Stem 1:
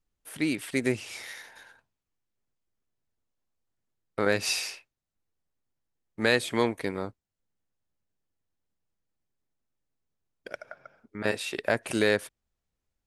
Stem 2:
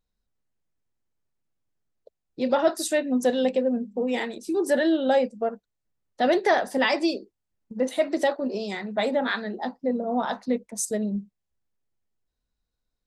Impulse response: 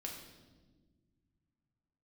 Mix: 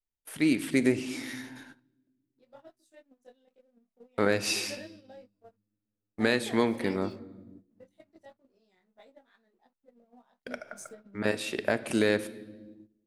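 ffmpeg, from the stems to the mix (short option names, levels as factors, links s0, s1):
-filter_complex "[0:a]adynamicequalizer=threshold=0.00891:dfrequency=240:dqfactor=1.1:tfrequency=240:tqfactor=1.1:attack=5:release=100:ratio=0.375:range=2.5:mode=boostabove:tftype=bell,alimiter=limit=0.251:level=0:latency=1:release=467,volume=0.794,asplit=3[s0][s1][s2];[s1]volume=0.473[s3];[1:a]acompressor=threshold=0.0447:ratio=4,flanger=delay=20:depth=2:speed=0.17,aeval=exprs='sgn(val(0))*max(abs(val(0))-0.00251,0)':c=same,volume=0.282[s4];[s2]apad=whole_len=576229[s5];[s4][s5]sidechaingate=range=0.398:threshold=0.00158:ratio=16:detection=peak[s6];[2:a]atrim=start_sample=2205[s7];[s3][s7]afir=irnorm=-1:irlink=0[s8];[s0][s6][s8]amix=inputs=3:normalize=0,agate=range=0.2:threshold=0.00316:ratio=16:detection=peak"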